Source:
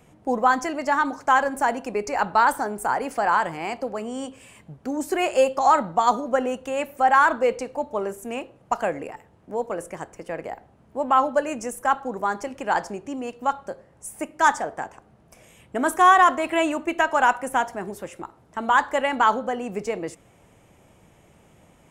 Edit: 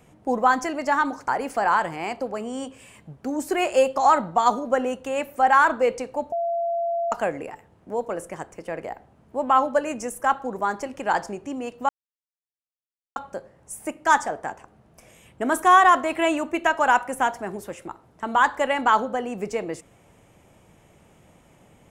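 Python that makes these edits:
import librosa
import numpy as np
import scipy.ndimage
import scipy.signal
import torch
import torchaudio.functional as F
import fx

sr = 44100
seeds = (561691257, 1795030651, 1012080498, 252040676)

y = fx.edit(x, sr, fx.cut(start_s=1.28, length_s=1.61),
    fx.bleep(start_s=7.93, length_s=0.8, hz=681.0, db=-22.0),
    fx.insert_silence(at_s=13.5, length_s=1.27), tone=tone)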